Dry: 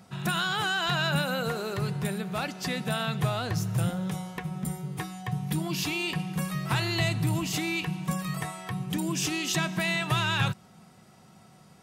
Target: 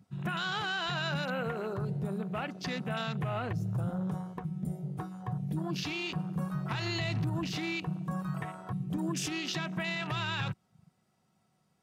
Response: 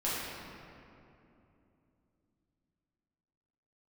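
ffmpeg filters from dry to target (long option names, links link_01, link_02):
-filter_complex "[0:a]asettb=1/sr,asplit=3[link_01][link_02][link_03];[link_01]atrim=end=6.864[link_04];[link_02]atrim=start=6.86:end=7.3,asetpts=PTS-STARTPTS,afade=type=in:duration=0.004:curve=qsin,afade=type=out:start_time=0.436:duration=0.004:curve=qsin,acontrast=50[link_05];[link_03]atrim=start=7.296[link_06];[link_04][link_05]acrossfade=duration=0.004:curve1=hsin:curve2=qsin[link_07];[link_07][link_06]acrossfade=duration=0.004:curve1=qsin:curve2=hsin,afwtdn=0.0158,alimiter=limit=-23dB:level=0:latency=1:release=82,volume=-2dB"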